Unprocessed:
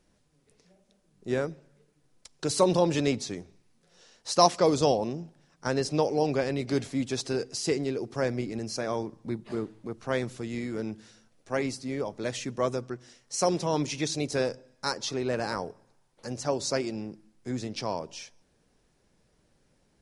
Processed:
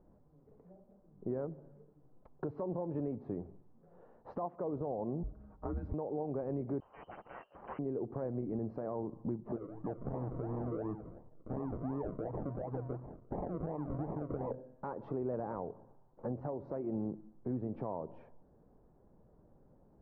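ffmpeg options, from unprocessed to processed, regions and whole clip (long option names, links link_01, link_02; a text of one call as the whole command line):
ffmpeg -i in.wav -filter_complex "[0:a]asettb=1/sr,asplit=3[link_01][link_02][link_03];[link_01]atrim=end=5.234[link_04];[link_02]atrim=start=5.23:end=5.94,asetpts=PTS-STARTPTS,afade=type=in:duration=0.004:curve=qsin,afade=type=out:start_time=0.706:duration=0.004:curve=qsin,acompressor=threshold=-35dB:ratio=4:attack=3.2:release=140:knee=1:detection=peak,aecho=1:1:6.1:0.83,atrim=end_sample=31311,afreqshift=-210[link_05];[link_03]atrim=start=5.936[link_06];[link_04][link_05]acrossfade=duration=0.004:curve1=hsin:curve2=qsin[link_07];[link_07][link_06]acrossfade=duration=0.004:curve1=qsin:curve2=hsin,asettb=1/sr,asplit=3[link_08][link_09][link_10];[link_08]atrim=end=6.804[link_11];[link_09]atrim=start=6.8:end=7.79,asetpts=PTS-STARTPTS,afade=type=in:duration=0.004:curve=qsin,afade=type=out:start_time=0.986:duration=0.004:curve=qsin,equalizer=frequency=1600:width=4.3:gain=-4,aeval=exprs='0.0251*(abs(mod(val(0)/0.0251+3,4)-2)-1)':channel_layout=same,lowpass=frequency=2700:width_type=q:width=0.5098,lowpass=frequency=2700:width_type=q:width=0.6013,lowpass=frequency=2700:width_type=q:width=0.9,lowpass=frequency=2700:width_type=q:width=2.563,afreqshift=-3200[link_12];[link_10]atrim=start=7.786[link_13];[link_11][link_12]acrossfade=duration=0.004:curve1=hsin:curve2=qsin[link_14];[link_14][link_13]acrossfade=duration=0.004:curve1=qsin:curve2=hsin,asettb=1/sr,asplit=3[link_15][link_16][link_17];[link_15]atrim=end=9.564[link_18];[link_16]atrim=start=9.56:end=14.51,asetpts=PTS-STARTPTS,afade=type=in:duration=0.004:curve=qsin,afade=type=out:start_time=4.946:duration=0.004:curve=qsin,aecho=1:1:6.6:0.7,atrim=end_sample=218295,acompressor=threshold=-37dB:ratio=12:attack=3.2:release=140:knee=1:detection=peak,acrusher=samples=42:mix=1:aa=0.000001:lfo=1:lforange=25.2:lforate=2.8[link_19];[link_17]atrim=start=14.506[link_20];[link_18][link_19]acrossfade=duration=0.004:curve1=hsin:curve2=qsin[link_21];[link_21][link_20]acrossfade=duration=0.004:curve1=qsin:curve2=hsin,lowpass=frequency=1000:width=0.5412,lowpass=frequency=1000:width=1.3066,acompressor=threshold=-36dB:ratio=3,alimiter=level_in=8.5dB:limit=-24dB:level=0:latency=1:release=225,volume=-8.5dB,volume=4.5dB" out.wav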